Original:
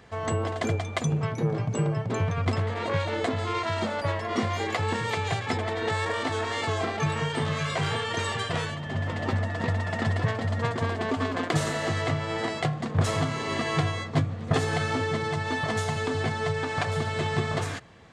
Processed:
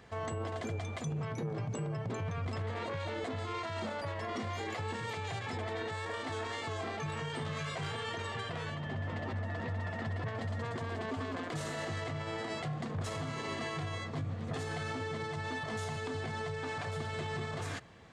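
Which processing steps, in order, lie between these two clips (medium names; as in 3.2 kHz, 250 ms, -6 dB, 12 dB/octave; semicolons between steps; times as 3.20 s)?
8.14–10.38 s: low-pass 3.7 kHz 6 dB/octave; peak limiter -25.5 dBFS, peak gain reduction 11.5 dB; trim -4 dB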